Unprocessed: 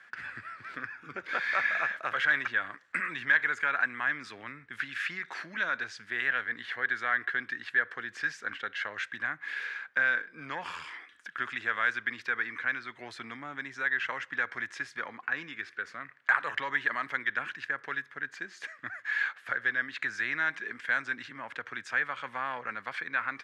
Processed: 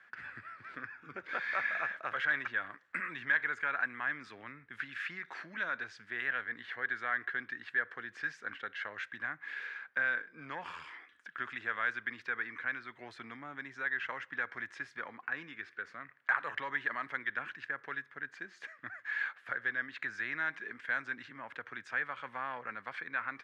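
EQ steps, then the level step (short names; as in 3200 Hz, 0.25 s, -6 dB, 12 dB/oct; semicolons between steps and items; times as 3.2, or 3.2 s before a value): high shelf 4200 Hz -10 dB; -4.0 dB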